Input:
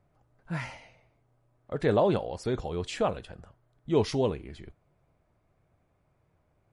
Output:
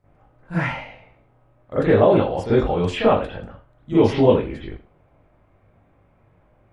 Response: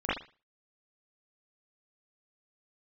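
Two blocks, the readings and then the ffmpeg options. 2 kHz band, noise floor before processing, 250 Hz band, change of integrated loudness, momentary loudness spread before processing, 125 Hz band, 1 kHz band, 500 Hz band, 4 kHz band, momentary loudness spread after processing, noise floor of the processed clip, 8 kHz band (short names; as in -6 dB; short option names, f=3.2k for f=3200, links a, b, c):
+11.0 dB, -71 dBFS, +11.5 dB, +10.0 dB, 17 LU, +10.0 dB, +10.0 dB, +10.5 dB, +7.0 dB, 17 LU, -59 dBFS, n/a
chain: -filter_complex "[0:a]alimiter=limit=-17.5dB:level=0:latency=1:release=270[a];[1:a]atrim=start_sample=2205[b];[a][b]afir=irnorm=-1:irlink=0,volume=2dB"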